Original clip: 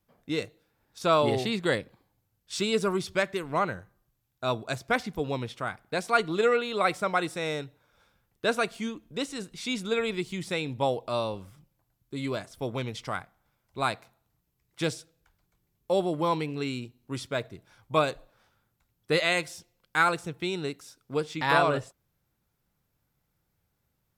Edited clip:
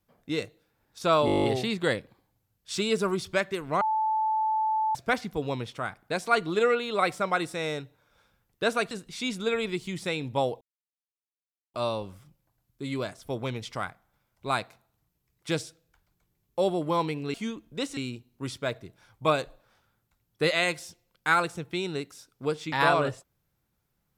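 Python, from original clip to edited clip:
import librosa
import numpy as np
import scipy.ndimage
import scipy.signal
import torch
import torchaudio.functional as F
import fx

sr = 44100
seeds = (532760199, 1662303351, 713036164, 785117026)

y = fx.edit(x, sr, fx.stutter(start_s=1.26, slice_s=0.02, count=10),
    fx.bleep(start_s=3.63, length_s=1.14, hz=873.0, db=-23.0),
    fx.move(start_s=8.73, length_s=0.63, to_s=16.66),
    fx.insert_silence(at_s=11.06, length_s=1.13), tone=tone)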